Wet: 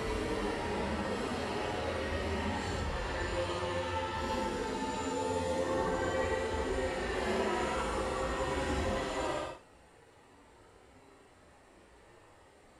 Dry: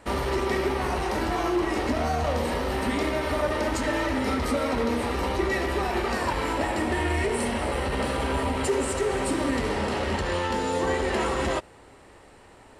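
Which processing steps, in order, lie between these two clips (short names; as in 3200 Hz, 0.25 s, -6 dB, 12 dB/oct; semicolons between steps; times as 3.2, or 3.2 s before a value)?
Paulstretch 4.8×, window 0.10 s, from 9.63; gain -8 dB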